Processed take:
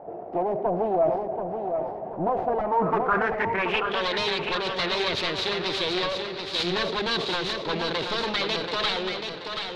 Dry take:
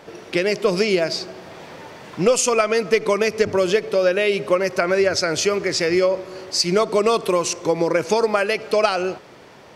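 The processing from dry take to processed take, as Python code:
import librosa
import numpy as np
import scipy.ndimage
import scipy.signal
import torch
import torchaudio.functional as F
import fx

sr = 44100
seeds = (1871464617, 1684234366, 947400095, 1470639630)

p1 = fx.self_delay(x, sr, depth_ms=0.95)
p2 = fx.high_shelf(p1, sr, hz=6300.0, db=-8.0)
p3 = 10.0 ** (-20.5 / 20.0) * np.tanh(p2 / 10.0 ** (-20.5 / 20.0))
p4 = fx.filter_sweep_lowpass(p3, sr, from_hz=720.0, to_hz=3900.0, start_s=2.55, end_s=4.1, q=6.1)
p5 = p4 + fx.echo_feedback(p4, sr, ms=731, feedback_pct=43, wet_db=-6, dry=0)
p6 = fx.sustainer(p5, sr, db_per_s=55.0)
y = F.gain(torch.from_numpy(p6), -5.0).numpy()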